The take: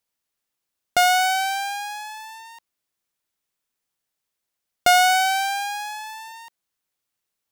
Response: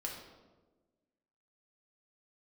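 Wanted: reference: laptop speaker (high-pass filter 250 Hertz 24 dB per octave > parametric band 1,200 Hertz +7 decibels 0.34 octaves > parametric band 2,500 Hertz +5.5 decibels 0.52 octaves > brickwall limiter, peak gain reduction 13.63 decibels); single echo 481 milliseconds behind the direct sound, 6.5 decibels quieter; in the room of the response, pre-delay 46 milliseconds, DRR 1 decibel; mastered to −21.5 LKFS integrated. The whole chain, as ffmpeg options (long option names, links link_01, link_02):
-filter_complex "[0:a]aecho=1:1:481:0.473,asplit=2[link_01][link_02];[1:a]atrim=start_sample=2205,adelay=46[link_03];[link_02][link_03]afir=irnorm=-1:irlink=0,volume=-1dB[link_04];[link_01][link_04]amix=inputs=2:normalize=0,highpass=frequency=250:width=0.5412,highpass=frequency=250:width=1.3066,equalizer=frequency=1200:width_type=o:width=0.34:gain=7,equalizer=frequency=2500:width_type=o:width=0.52:gain=5.5,volume=0.5dB,alimiter=limit=-12dB:level=0:latency=1"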